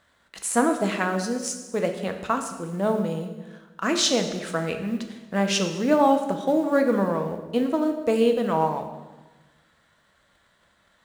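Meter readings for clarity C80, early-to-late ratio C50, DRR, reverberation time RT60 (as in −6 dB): 9.5 dB, 8.0 dB, 5.0 dB, 1.2 s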